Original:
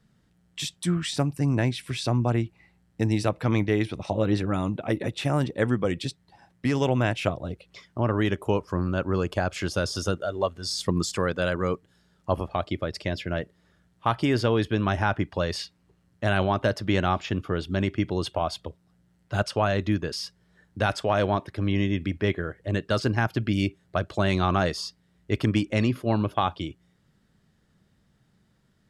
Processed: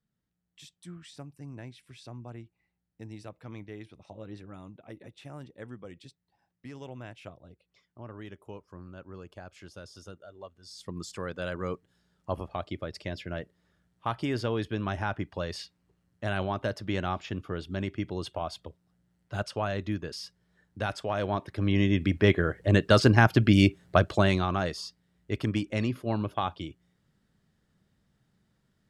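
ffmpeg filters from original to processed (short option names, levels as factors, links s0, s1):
-af "volume=1.78,afade=t=in:st=10.63:d=1.05:silence=0.237137,afade=t=in:st=21.21:d=1.36:silence=0.251189,afade=t=out:st=23.99:d=0.47:silence=0.298538"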